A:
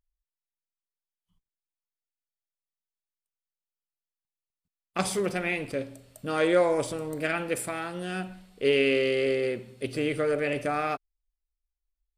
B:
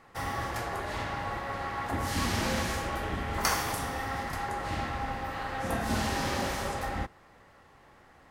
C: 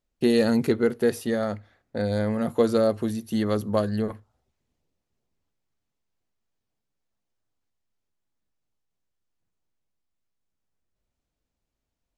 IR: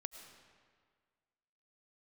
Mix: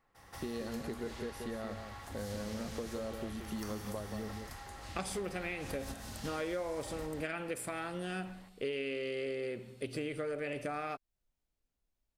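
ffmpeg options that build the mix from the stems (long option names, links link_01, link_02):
-filter_complex "[0:a]volume=-2.5dB,asplit=2[link_01][link_02];[1:a]acrossover=split=82|3300[link_03][link_04][link_05];[link_03]acompressor=threshold=-45dB:ratio=4[link_06];[link_04]acompressor=threshold=-46dB:ratio=4[link_07];[link_05]acompressor=threshold=-46dB:ratio=4[link_08];[link_06][link_07][link_08]amix=inputs=3:normalize=0,volume=-0.5dB,asplit=2[link_09][link_10];[link_10]volume=-4dB[link_11];[2:a]acompressor=threshold=-33dB:ratio=2.5,adelay=200,volume=-7dB,asplit=2[link_12][link_13];[link_13]volume=-7.5dB[link_14];[link_02]apad=whole_len=366365[link_15];[link_09][link_15]sidechaingate=range=-18dB:threshold=-42dB:ratio=16:detection=peak[link_16];[link_11][link_14]amix=inputs=2:normalize=0,aecho=0:1:179:1[link_17];[link_01][link_16][link_12][link_17]amix=inputs=4:normalize=0,acompressor=threshold=-35dB:ratio=6"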